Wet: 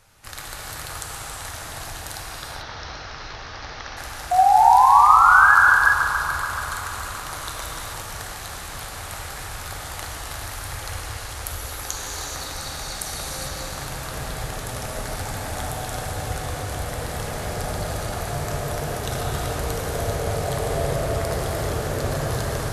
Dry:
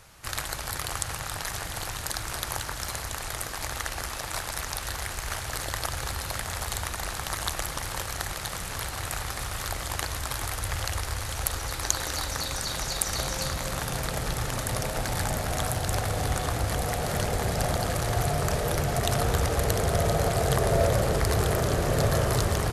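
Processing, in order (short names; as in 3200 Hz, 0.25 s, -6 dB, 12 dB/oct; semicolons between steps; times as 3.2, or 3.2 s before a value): 2.18–3.97 steep low-pass 5900 Hz 72 dB/oct; 4.31–5.55 painted sound rise 710–1700 Hz -12 dBFS; narrowing echo 0.143 s, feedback 84%, band-pass 1100 Hz, level -9.5 dB; non-linear reverb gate 0.46 s flat, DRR -2 dB; gain -5 dB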